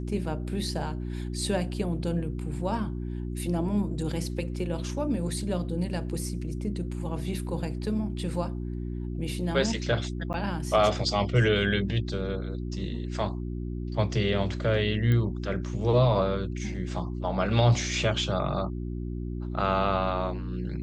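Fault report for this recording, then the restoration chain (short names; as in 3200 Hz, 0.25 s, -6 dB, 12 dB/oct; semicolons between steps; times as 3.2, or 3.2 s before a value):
hum 60 Hz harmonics 6 -33 dBFS
10.33–10.34 gap 9.8 ms
15.12 pop -17 dBFS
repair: de-click; de-hum 60 Hz, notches 6; interpolate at 10.33, 9.8 ms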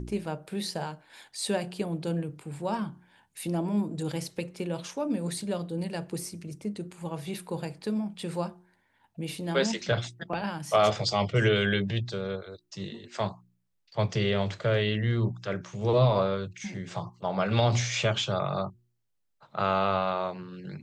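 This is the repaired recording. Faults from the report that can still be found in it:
none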